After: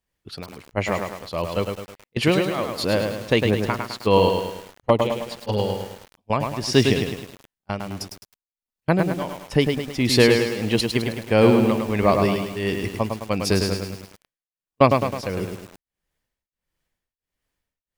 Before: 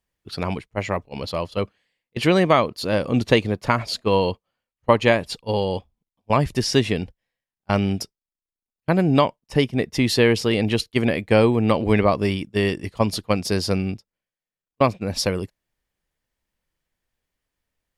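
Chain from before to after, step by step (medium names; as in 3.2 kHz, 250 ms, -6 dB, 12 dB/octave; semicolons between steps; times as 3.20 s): 4.29–5.59 s: touch-sensitive flanger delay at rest 9.8 ms, full sweep at -16.5 dBFS; tremolo triangle 1.5 Hz, depth 100%; bit-crushed delay 105 ms, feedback 55%, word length 7-bit, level -4.5 dB; trim +3 dB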